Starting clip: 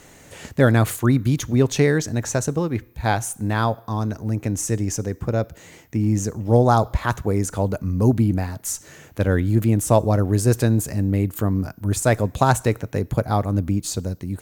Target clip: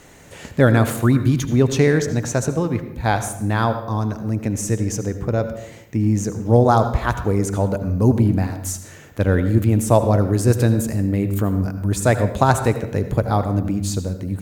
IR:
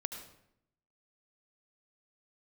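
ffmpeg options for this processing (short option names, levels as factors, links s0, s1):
-filter_complex "[0:a]asplit=2[s0][s1];[1:a]atrim=start_sample=2205,highshelf=f=5100:g=-6.5[s2];[s1][s2]afir=irnorm=-1:irlink=0,volume=1.78[s3];[s0][s3]amix=inputs=2:normalize=0,volume=0.473"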